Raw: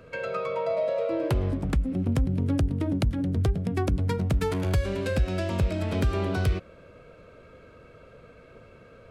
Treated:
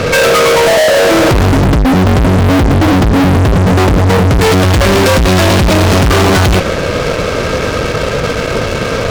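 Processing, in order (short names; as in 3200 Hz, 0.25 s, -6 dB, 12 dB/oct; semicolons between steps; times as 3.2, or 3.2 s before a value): CVSD 32 kbps; 1.61–4.31 LPF 1100 Hz; fuzz box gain 48 dB, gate -56 dBFS; gain +6 dB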